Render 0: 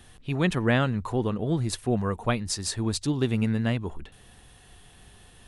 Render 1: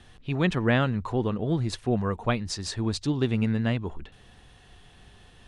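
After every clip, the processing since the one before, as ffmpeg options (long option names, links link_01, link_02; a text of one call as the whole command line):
ffmpeg -i in.wav -af "lowpass=5800" out.wav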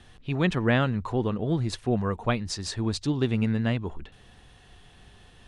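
ffmpeg -i in.wav -af anull out.wav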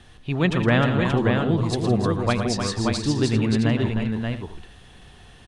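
ffmpeg -i in.wav -af "aecho=1:1:114|164|308|579|656:0.376|0.2|0.422|0.596|0.168,volume=3dB" out.wav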